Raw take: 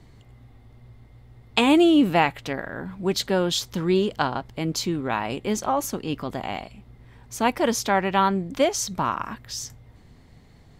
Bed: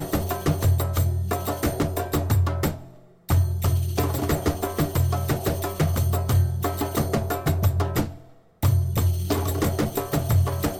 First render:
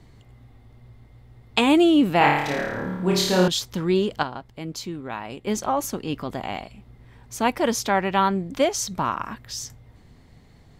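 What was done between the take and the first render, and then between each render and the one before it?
2.18–3.48 s: flutter echo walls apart 4.7 m, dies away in 0.87 s; 4.23–5.47 s: gain -6.5 dB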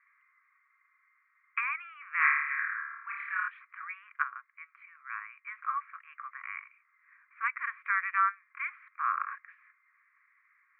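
Chebyshev band-pass 1.1–2.4 kHz, order 5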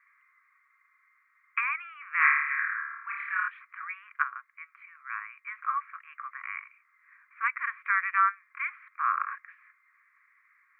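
trim +3 dB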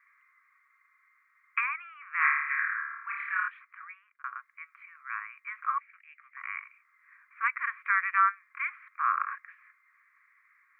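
1.66–2.50 s: treble shelf 2.1 kHz -7 dB; 3.34–4.24 s: fade out; 5.78–6.37 s: ladder high-pass 1.9 kHz, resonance 50%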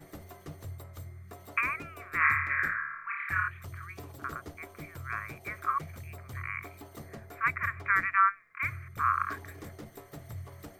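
add bed -22 dB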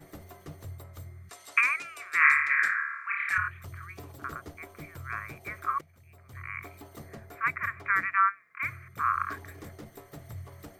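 1.29–3.38 s: frequency weighting ITU-R 468; 5.81–6.60 s: fade in quadratic, from -16.5 dB; 7.35–9.16 s: high-pass 120 Hz

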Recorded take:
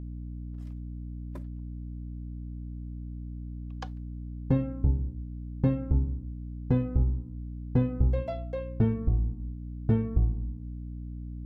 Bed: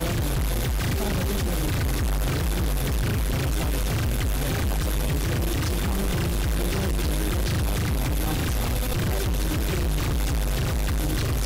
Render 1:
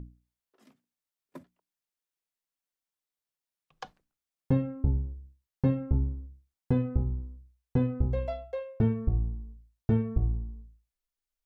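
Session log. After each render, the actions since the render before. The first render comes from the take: hum notches 60/120/180/240/300 Hz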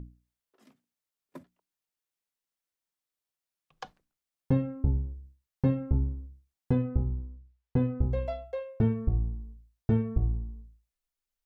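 6.75–8.01 s: distance through air 130 m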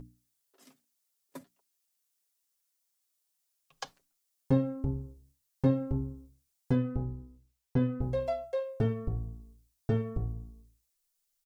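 tone controls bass -6 dB, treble +11 dB; comb 7.3 ms, depth 56%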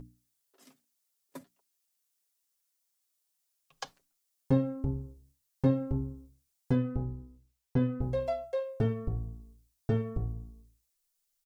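no audible change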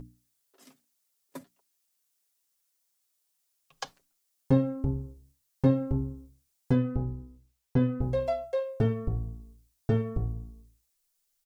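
trim +3 dB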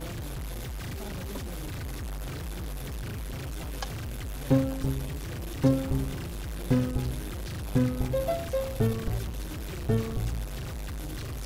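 add bed -11.5 dB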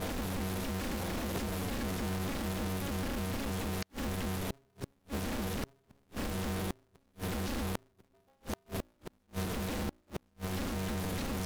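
inverted gate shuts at -23 dBFS, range -41 dB; polarity switched at an audio rate 140 Hz

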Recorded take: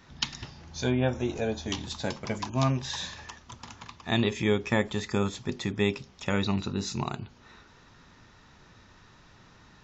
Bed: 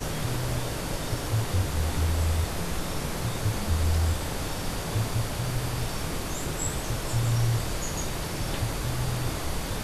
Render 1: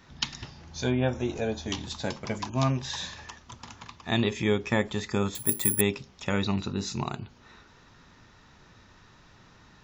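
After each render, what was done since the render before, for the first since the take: 5.35–5.81 s: careless resampling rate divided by 4×, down filtered, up zero stuff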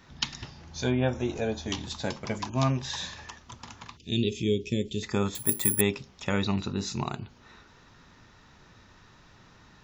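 3.97–5.03 s: Chebyshev band-stop 430–2800 Hz, order 3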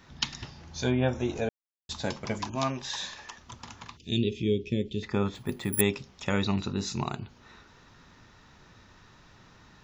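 1.49–1.89 s: mute; 2.55–3.38 s: peaking EQ 90 Hz -13 dB 2.2 oct; 4.18–5.73 s: distance through air 170 m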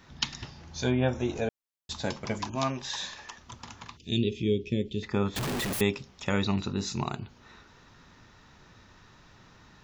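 5.36–5.81 s: one-bit comparator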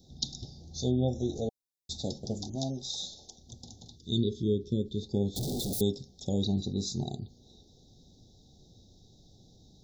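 Chebyshev band-stop 770–3600 Hz, order 5; peaking EQ 640 Hz -6 dB 0.78 oct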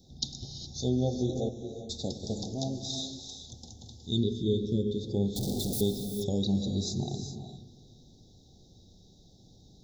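feedback echo behind a low-pass 115 ms, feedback 68%, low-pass 410 Hz, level -11 dB; gated-style reverb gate 440 ms rising, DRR 7 dB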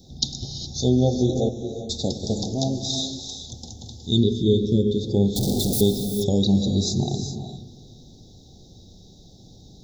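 trim +9 dB

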